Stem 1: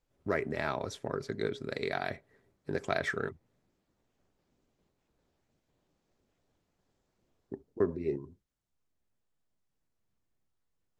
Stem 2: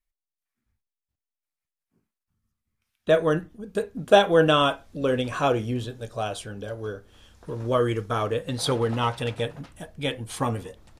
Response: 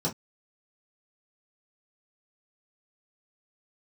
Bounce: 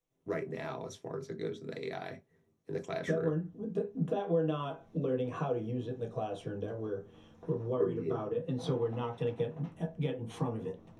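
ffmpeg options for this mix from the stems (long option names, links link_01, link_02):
-filter_complex "[0:a]highshelf=frequency=3300:gain=7.5,volume=-10.5dB,asplit=3[link_01][link_02][link_03];[link_02]volume=-9.5dB[link_04];[1:a]lowpass=frequency=1900:poles=1,alimiter=limit=-15dB:level=0:latency=1:release=168,acompressor=threshold=-34dB:ratio=4,volume=-5.5dB,asplit=2[link_05][link_06];[link_06]volume=-7dB[link_07];[link_03]apad=whole_len=484680[link_08];[link_05][link_08]sidechaincompress=threshold=-44dB:ratio=8:attack=5.5:release=955[link_09];[2:a]atrim=start_sample=2205[link_10];[link_04][link_07]amix=inputs=2:normalize=0[link_11];[link_11][link_10]afir=irnorm=-1:irlink=0[link_12];[link_01][link_09][link_12]amix=inputs=3:normalize=0"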